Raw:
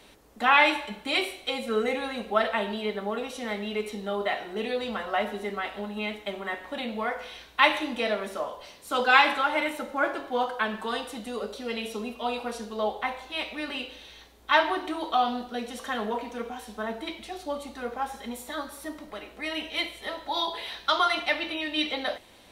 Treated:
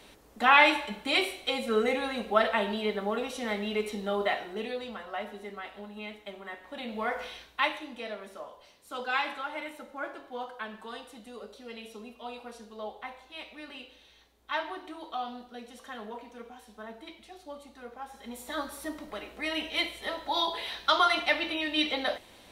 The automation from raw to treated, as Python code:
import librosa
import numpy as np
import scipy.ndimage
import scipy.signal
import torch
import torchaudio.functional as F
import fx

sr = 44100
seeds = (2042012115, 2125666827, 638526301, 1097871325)

y = fx.gain(x, sr, db=fx.line((4.27, 0.0), (4.99, -9.0), (6.62, -9.0), (7.23, 1.0), (7.8, -11.0), (18.06, -11.0), (18.57, 0.0)))